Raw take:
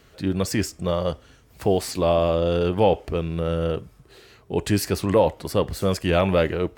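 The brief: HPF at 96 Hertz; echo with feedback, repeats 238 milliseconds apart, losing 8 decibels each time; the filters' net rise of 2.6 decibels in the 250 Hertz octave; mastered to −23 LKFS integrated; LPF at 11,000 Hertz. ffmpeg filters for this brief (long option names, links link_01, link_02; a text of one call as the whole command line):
ffmpeg -i in.wav -af "highpass=96,lowpass=11000,equalizer=frequency=250:width_type=o:gain=4,aecho=1:1:238|476|714|952|1190:0.398|0.159|0.0637|0.0255|0.0102,volume=-1.5dB" out.wav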